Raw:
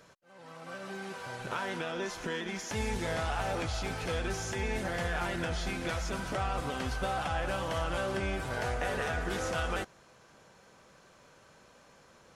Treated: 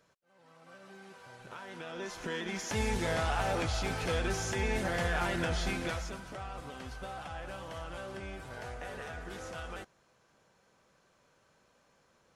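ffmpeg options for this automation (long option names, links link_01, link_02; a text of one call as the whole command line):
ffmpeg -i in.wav -af "volume=1.5dB,afade=type=in:start_time=1.67:duration=1.05:silence=0.237137,afade=type=out:start_time=5.71:duration=0.5:silence=0.281838" out.wav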